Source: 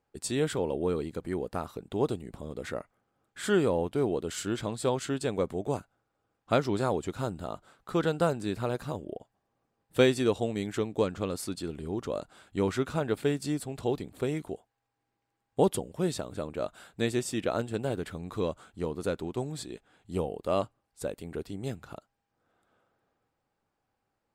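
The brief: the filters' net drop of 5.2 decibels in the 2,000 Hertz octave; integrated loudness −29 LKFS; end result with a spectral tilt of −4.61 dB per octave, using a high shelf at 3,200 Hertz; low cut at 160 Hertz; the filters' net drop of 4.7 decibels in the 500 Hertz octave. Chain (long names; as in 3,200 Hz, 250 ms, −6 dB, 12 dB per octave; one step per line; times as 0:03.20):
high-pass filter 160 Hz
parametric band 500 Hz −5.5 dB
parametric band 2,000 Hz −8.5 dB
high-shelf EQ 3,200 Hz +4 dB
level +6 dB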